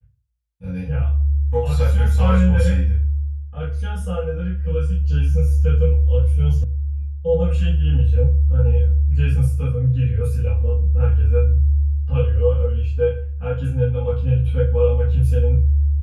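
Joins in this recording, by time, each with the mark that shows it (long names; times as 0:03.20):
0:06.64: cut off before it has died away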